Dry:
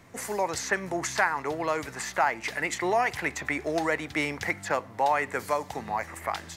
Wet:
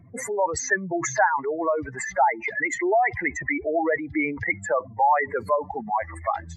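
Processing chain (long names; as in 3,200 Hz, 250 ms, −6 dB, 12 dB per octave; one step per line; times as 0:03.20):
expanding power law on the bin magnitudes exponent 3.1
dynamic equaliser 1,100 Hz, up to +4 dB, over −42 dBFS, Q 2.8
level +4.5 dB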